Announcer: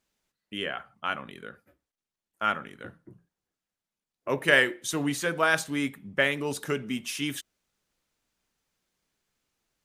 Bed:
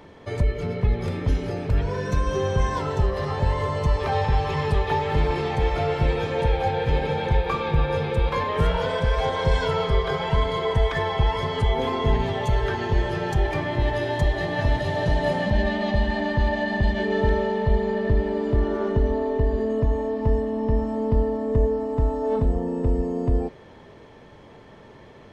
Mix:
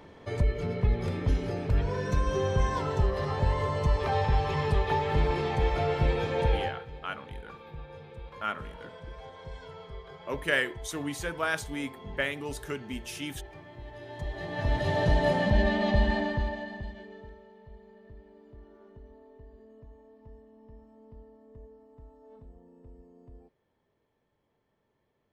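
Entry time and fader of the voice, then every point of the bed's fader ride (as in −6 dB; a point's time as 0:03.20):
6.00 s, −6.0 dB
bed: 0:06.57 −4 dB
0:06.88 −22 dB
0:13.86 −22 dB
0:14.90 −2 dB
0:16.13 −2 dB
0:17.39 −29.5 dB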